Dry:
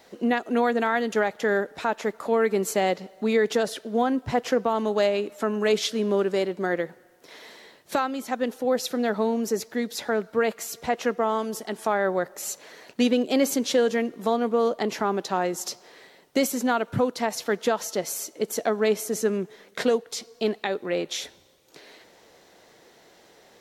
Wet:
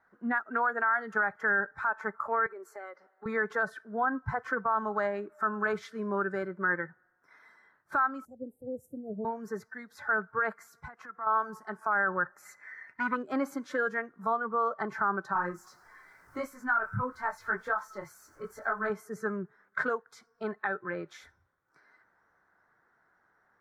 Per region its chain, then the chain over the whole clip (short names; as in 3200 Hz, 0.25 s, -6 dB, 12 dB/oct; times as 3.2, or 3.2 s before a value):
2.46–3.26 HPF 320 Hz 24 dB/oct + compressor 3:1, threshold -33 dBFS
8.25–9.25 inverse Chebyshev band-stop 1100–4300 Hz, stop band 50 dB + bell 85 Hz +8.5 dB 1.1 oct
10.66–11.27 expander -47 dBFS + compressor 3:1, threshold -32 dBFS
12.45–13.16 bell 2000 Hz +13 dB 0.39 oct + core saturation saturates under 790 Hz
15.33–18.9 zero-crossing step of -36.5 dBFS + detuned doubles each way 32 cents
whole clip: spectral noise reduction 13 dB; EQ curve 110 Hz 0 dB, 520 Hz -11 dB, 1500 Hz +12 dB, 2800 Hz -22 dB; limiter -17.5 dBFS; gain -1 dB